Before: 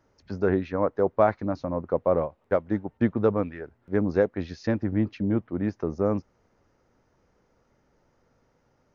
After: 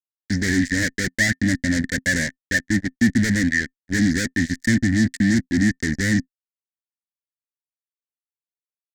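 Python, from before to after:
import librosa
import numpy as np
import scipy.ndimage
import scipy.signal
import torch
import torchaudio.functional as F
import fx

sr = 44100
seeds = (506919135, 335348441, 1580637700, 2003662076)

y = fx.fuzz(x, sr, gain_db=35.0, gate_db=-39.0)
y = fx.curve_eq(y, sr, hz=(180.0, 260.0, 420.0, 620.0, 1200.0, 1800.0, 2600.0, 4200.0, 7200.0, 11000.0), db=(0, 6, -17, -16, -28, 15, -10, 4, 11, -3))
y = F.gain(torch.from_numpy(y), -2.5).numpy()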